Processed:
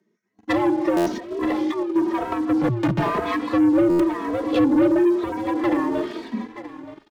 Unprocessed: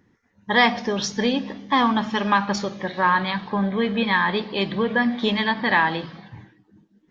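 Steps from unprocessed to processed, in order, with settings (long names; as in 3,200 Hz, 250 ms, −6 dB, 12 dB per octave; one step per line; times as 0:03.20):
bass and treble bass +6 dB, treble +5 dB
on a send at −22 dB: convolution reverb, pre-delay 105 ms
0:02.61–0:03.25: on the sum: comparator with hysteresis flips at −23.5 dBFS
frequency shifter +110 Hz
0:04.44–0:04.95: low-shelf EQ 380 Hz +6.5 dB
treble cut that deepens with the level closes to 480 Hz, closed at −15.5 dBFS
single-tap delay 926 ms −16.5 dB
0:01.06–0:01.96: compressor whose output falls as the input rises −26 dBFS, ratio −0.5
leveller curve on the samples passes 3
buffer that repeats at 0:00.96/0:03.89, samples 512, times 8
barber-pole flanger 2.8 ms +0.99 Hz
level −2.5 dB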